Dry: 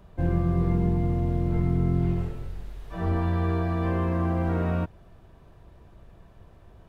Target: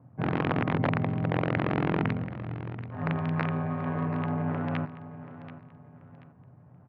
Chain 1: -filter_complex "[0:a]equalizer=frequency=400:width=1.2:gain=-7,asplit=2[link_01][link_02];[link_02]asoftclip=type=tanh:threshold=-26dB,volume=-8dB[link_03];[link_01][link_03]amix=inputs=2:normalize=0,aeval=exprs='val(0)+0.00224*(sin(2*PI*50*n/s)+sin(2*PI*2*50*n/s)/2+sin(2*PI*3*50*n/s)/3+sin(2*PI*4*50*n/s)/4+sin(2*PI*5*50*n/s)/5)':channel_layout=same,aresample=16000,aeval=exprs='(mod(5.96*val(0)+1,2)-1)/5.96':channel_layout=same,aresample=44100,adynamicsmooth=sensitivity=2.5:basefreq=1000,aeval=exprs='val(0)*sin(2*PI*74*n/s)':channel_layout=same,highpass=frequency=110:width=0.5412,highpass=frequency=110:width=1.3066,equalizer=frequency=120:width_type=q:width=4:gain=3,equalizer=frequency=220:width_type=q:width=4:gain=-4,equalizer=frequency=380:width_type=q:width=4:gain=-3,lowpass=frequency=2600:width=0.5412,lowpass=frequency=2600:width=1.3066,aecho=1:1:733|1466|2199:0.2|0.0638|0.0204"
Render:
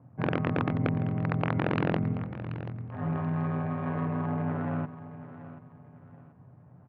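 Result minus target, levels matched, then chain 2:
soft clipping: distortion +13 dB
-filter_complex "[0:a]equalizer=frequency=400:width=1.2:gain=-7,asplit=2[link_01][link_02];[link_02]asoftclip=type=tanh:threshold=-15.5dB,volume=-8dB[link_03];[link_01][link_03]amix=inputs=2:normalize=0,aeval=exprs='val(0)+0.00224*(sin(2*PI*50*n/s)+sin(2*PI*2*50*n/s)/2+sin(2*PI*3*50*n/s)/3+sin(2*PI*4*50*n/s)/4+sin(2*PI*5*50*n/s)/5)':channel_layout=same,aresample=16000,aeval=exprs='(mod(5.96*val(0)+1,2)-1)/5.96':channel_layout=same,aresample=44100,adynamicsmooth=sensitivity=2.5:basefreq=1000,aeval=exprs='val(0)*sin(2*PI*74*n/s)':channel_layout=same,highpass=frequency=110:width=0.5412,highpass=frequency=110:width=1.3066,equalizer=frequency=120:width_type=q:width=4:gain=3,equalizer=frequency=220:width_type=q:width=4:gain=-4,equalizer=frequency=380:width_type=q:width=4:gain=-3,lowpass=frequency=2600:width=0.5412,lowpass=frequency=2600:width=1.3066,aecho=1:1:733|1466|2199:0.2|0.0638|0.0204"

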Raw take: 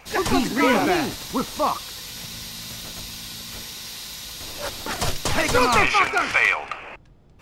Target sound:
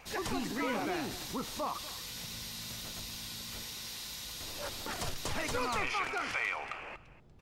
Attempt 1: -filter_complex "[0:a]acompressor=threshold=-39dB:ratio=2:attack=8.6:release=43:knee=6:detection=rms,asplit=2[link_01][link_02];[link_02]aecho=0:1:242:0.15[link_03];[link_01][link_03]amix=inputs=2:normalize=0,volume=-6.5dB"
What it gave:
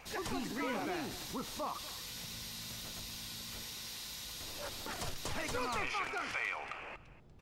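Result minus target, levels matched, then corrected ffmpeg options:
downward compressor: peak gain reduction +3 dB
-filter_complex "[0:a]acompressor=threshold=-32.5dB:ratio=2:attack=8.6:release=43:knee=6:detection=rms,asplit=2[link_01][link_02];[link_02]aecho=0:1:242:0.15[link_03];[link_01][link_03]amix=inputs=2:normalize=0,volume=-6.5dB"

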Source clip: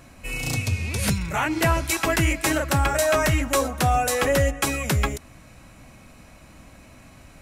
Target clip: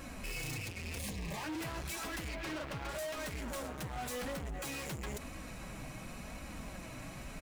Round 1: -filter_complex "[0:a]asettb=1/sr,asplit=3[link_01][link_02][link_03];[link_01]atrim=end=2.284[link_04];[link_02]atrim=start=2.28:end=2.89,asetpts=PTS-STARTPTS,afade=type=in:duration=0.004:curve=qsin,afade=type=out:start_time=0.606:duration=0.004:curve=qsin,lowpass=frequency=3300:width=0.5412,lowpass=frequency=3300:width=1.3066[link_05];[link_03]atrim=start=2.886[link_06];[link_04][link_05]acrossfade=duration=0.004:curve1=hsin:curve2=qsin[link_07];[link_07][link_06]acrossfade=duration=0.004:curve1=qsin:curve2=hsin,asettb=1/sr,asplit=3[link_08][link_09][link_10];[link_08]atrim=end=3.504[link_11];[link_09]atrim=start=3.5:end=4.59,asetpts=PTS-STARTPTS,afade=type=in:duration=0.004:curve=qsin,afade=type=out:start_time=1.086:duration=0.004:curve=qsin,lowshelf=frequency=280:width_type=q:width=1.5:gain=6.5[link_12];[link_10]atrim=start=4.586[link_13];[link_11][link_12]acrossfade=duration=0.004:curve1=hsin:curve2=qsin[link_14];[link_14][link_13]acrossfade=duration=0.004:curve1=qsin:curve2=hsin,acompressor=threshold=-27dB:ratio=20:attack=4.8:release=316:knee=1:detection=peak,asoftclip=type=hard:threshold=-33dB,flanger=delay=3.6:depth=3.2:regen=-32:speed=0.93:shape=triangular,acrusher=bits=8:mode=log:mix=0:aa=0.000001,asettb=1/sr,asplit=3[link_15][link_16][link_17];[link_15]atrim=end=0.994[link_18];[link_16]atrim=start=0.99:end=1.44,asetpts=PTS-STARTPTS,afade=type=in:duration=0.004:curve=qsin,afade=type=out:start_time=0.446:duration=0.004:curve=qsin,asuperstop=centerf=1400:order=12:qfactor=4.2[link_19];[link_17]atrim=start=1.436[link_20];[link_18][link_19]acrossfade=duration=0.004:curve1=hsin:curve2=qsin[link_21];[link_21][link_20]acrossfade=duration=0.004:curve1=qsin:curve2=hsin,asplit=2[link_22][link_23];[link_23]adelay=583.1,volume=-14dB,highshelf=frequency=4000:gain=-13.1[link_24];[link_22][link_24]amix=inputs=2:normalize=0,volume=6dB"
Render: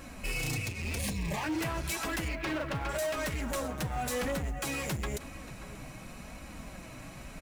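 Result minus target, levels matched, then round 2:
hard clipping: distortion −5 dB
-filter_complex "[0:a]asettb=1/sr,asplit=3[link_01][link_02][link_03];[link_01]atrim=end=2.284[link_04];[link_02]atrim=start=2.28:end=2.89,asetpts=PTS-STARTPTS,afade=type=in:duration=0.004:curve=qsin,afade=type=out:start_time=0.606:duration=0.004:curve=qsin,lowpass=frequency=3300:width=0.5412,lowpass=frequency=3300:width=1.3066[link_05];[link_03]atrim=start=2.886[link_06];[link_04][link_05]acrossfade=duration=0.004:curve1=hsin:curve2=qsin[link_07];[link_07][link_06]acrossfade=duration=0.004:curve1=qsin:curve2=hsin,asettb=1/sr,asplit=3[link_08][link_09][link_10];[link_08]atrim=end=3.504[link_11];[link_09]atrim=start=3.5:end=4.59,asetpts=PTS-STARTPTS,afade=type=in:duration=0.004:curve=qsin,afade=type=out:start_time=1.086:duration=0.004:curve=qsin,lowshelf=frequency=280:width_type=q:width=1.5:gain=6.5[link_12];[link_10]atrim=start=4.586[link_13];[link_11][link_12]acrossfade=duration=0.004:curve1=hsin:curve2=qsin[link_14];[link_14][link_13]acrossfade=duration=0.004:curve1=qsin:curve2=hsin,acompressor=threshold=-27dB:ratio=20:attack=4.8:release=316:knee=1:detection=peak,asoftclip=type=hard:threshold=-41.5dB,flanger=delay=3.6:depth=3.2:regen=-32:speed=0.93:shape=triangular,acrusher=bits=8:mode=log:mix=0:aa=0.000001,asettb=1/sr,asplit=3[link_15][link_16][link_17];[link_15]atrim=end=0.994[link_18];[link_16]atrim=start=0.99:end=1.44,asetpts=PTS-STARTPTS,afade=type=in:duration=0.004:curve=qsin,afade=type=out:start_time=0.446:duration=0.004:curve=qsin,asuperstop=centerf=1400:order=12:qfactor=4.2[link_19];[link_17]atrim=start=1.436[link_20];[link_18][link_19]acrossfade=duration=0.004:curve1=hsin:curve2=qsin[link_21];[link_21][link_20]acrossfade=duration=0.004:curve1=qsin:curve2=hsin,asplit=2[link_22][link_23];[link_23]adelay=583.1,volume=-14dB,highshelf=frequency=4000:gain=-13.1[link_24];[link_22][link_24]amix=inputs=2:normalize=0,volume=6dB"

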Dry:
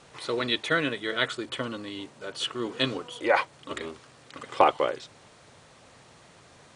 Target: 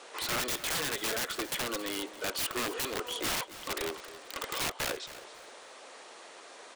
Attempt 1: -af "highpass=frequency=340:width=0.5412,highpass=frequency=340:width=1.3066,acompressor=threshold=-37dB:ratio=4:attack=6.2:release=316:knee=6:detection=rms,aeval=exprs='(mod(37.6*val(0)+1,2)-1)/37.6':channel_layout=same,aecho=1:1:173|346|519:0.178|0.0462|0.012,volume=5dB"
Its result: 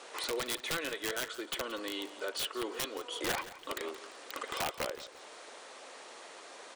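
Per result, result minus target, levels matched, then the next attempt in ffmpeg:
echo 100 ms early; downward compressor: peak gain reduction +6.5 dB
-af "highpass=frequency=340:width=0.5412,highpass=frequency=340:width=1.3066,acompressor=threshold=-37dB:ratio=4:attack=6.2:release=316:knee=6:detection=rms,aeval=exprs='(mod(37.6*val(0)+1,2)-1)/37.6':channel_layout=same,aecho=1:1:273|546|819:0.178|0.0462|0.012,volume=5dB"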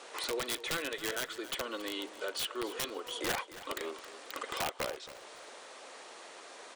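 downward compressor: peak gain reduction +6.5 dB
-af "highpass=frequency=340:width=0.5412,highpass=frequency=340:width=1.3066,acompressor=threshold=-28.5dB:ratio=4:attack=6.2:release=316:knee=6:detection=rms,aeval=exprs='(mod(37.6*val(0)+1,2)-1)/37.6':channel_layout=same,aecho=1:1:273|546|819:0.178|0.0462|0.012,volume=5dB"

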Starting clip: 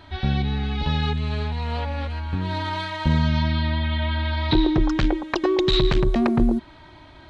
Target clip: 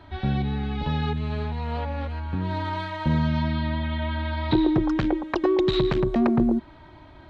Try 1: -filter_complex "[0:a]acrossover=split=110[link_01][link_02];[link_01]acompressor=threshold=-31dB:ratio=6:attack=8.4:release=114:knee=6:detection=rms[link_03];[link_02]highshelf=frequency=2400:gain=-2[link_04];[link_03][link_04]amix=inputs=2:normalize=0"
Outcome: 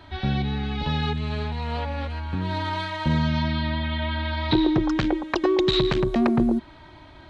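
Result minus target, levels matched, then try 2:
4,000 Hz band +5.5 dB
-filter_complex "[0:a]acrossover=split=110[link_01][link_02];[link_01]acompressor=threshold=-31dB:ratio=6:attack=8.4:release=114:knee=6:detection=rms[link_03];[link_02]highshelf=frequency=2400:gain=-11[link_04];[link_03][link_04]amix=inputs=2:normalize=0"

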